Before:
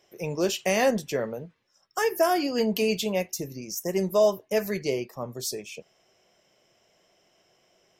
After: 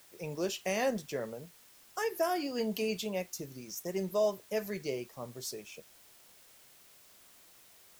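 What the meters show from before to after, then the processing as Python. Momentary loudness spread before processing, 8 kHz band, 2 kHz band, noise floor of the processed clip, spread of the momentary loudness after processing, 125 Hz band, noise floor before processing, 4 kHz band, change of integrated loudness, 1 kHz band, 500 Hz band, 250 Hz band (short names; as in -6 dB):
12 LU, -8.0 dB, -8.5 dB, -60 dBFS, 13 LU, -8.5 dB, -67 dBFS, -8.5 dB, -8.5 dB, -8.5 dB, -8.5 dB, -8.5 dB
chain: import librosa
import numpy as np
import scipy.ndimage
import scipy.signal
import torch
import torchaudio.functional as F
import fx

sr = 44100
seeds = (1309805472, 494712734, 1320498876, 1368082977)

y = fx.dmg_noise_colour(x, sr, seeds[0], colour='white', level_db=-51.0)
y = F.gain(torch.from_numpy(y), -8.5).numpy()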